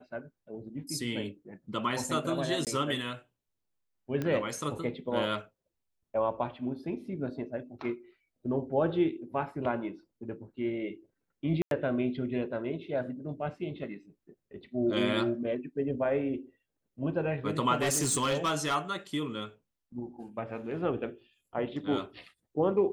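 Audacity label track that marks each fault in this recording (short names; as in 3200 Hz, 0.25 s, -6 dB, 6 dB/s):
2.650000	2.670000	gap 18 ms
4.220000	4.220000	pop -20 dBFS
11.620000	11.710000	gap 92 ms
17.820000	18.760000	clipped -24 dBFS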